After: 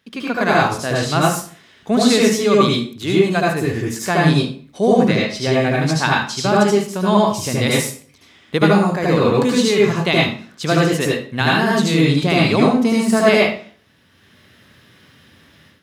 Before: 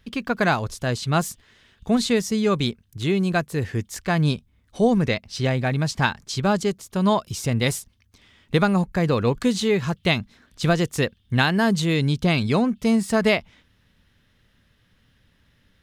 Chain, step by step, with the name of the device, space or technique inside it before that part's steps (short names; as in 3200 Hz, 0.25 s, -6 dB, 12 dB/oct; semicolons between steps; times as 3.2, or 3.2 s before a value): far laptop microphone (reverb RT60 0.45 s, pre-delay 70 ms, DRR -4 dB; HPF 200 Hz 12 dB/oct; AGC); gain -1 dB